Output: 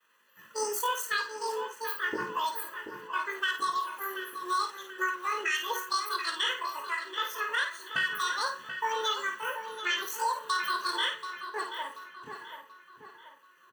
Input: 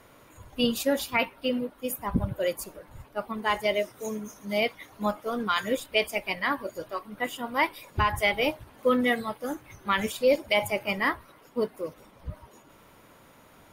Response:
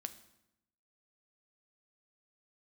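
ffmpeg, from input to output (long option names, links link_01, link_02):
-filter_complex "[0:a]agate=range=-33dB:threshold=-45dB:ratio=3:detection=peak,highpass=380,equalizer=frequency=2700:width=3.6:gain=-11,aecho=1:1:1.2:0.93,acompressor=threshold=-26dB:ratio=20,asetrate=78577,aresample=44100,atempo=0.561231,flanger=delay=1.4:depth=7.7:regen=-73:speed=0.88:shape=triangular,asplit=2[link_01][link_02];[link_02]adelay=733,lowpass=frequency=3600:poles=1,volume=-9dB,asplit=2[link_03][link_04];[link_04]adelay=733,lowpass=frequency=3600:poles=1,volume=0.46,asplit=2[link_05][link_06];[link_06]adelay=733,lowpass=frequency=3600:poles=1,volume=0.46,asplit=2[link_07][link_08];[link_08]adelay=733,lowpass=frequency=3600:poles=1,volume=0.46,asplit=2[link_09][link_10];[link_10]adelay=733,lowpass=frequency=3600:poles=1,volume=0.46[link_11];[link_01][link_03][link_05][link_07][link_09][link_11]amix=inputs=6:normalize=0,asplit=2[link_12][link_13];[1:a]atrim=start_sample=2205,adelay=53[link_14];[link_13][link_14]afir=irnorm=-1:irlink=0,volume=-4dB[link_15];[link_12][link_15]amix=inputs=2:normalize=0,volume=4.5dB"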